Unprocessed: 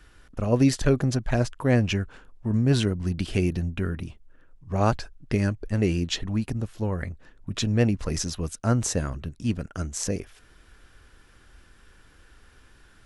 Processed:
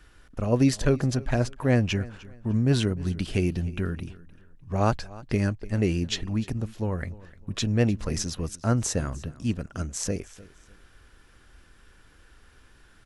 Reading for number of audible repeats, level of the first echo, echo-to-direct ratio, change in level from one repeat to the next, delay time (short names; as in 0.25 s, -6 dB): 2, -20.0 dB, -19.5 dB, -10.5 dB, 0.302 s